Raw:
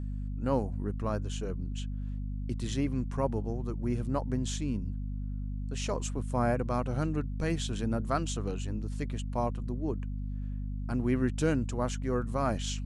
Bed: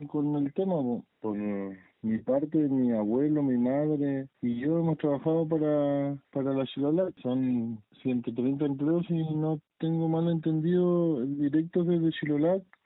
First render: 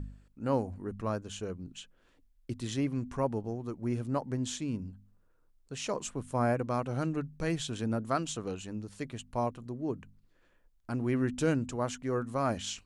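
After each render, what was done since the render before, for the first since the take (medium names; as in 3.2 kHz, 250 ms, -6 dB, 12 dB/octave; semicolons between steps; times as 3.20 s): de-hum 50 Hz, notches 5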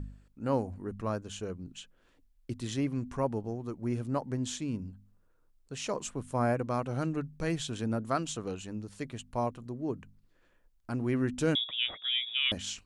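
11.55–12.52 s: frequency inversion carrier 3.6 kHz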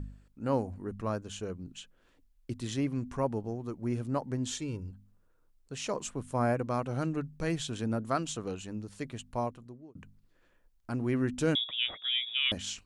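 4.51–4.91 s: comb 2.2 ms, depth 66%; 9.33–9.95 s: fade out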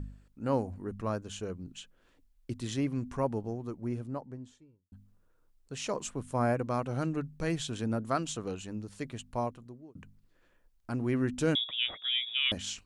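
3.43–4.92 s: studio fade out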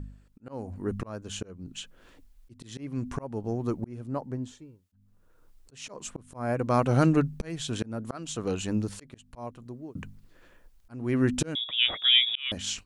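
level rider gain up to 11 dB; slow attack 593 ms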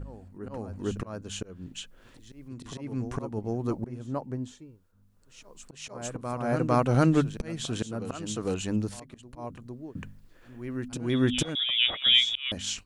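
reverse echo 454 ms -10 dB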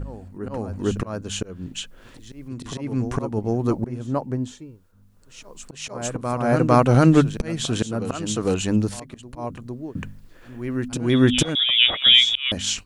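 trim +8 dB; peak limiter -3 dBFS, peak gain reduction 3 dB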